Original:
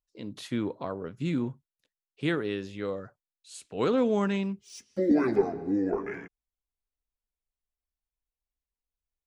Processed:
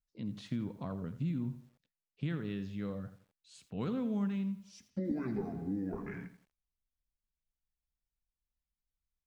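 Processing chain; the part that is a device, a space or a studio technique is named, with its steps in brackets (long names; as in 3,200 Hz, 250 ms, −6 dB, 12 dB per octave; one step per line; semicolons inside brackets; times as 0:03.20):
jukebox (low-pass filter 6,100 Hz 12 dB per octave; low shelf with overshoot 270 Hz +10 dB, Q 1.5; downward compressor 3 to 1, threshold −26 dBFS, peak gain reduction 10 dB)
feedback echo at a low word length 84 ms, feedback 35%, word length 9 bits, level −12.5 dB
level −8 dB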